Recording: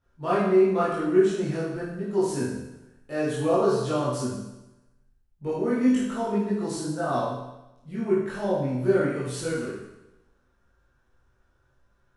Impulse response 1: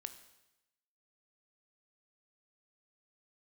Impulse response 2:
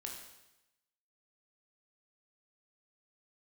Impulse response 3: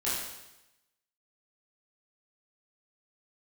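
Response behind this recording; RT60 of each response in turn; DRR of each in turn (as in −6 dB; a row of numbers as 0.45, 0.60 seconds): 3; 0.95, 0.95, 0.95 seconds; 9.0, −0.5, −10.0 decibels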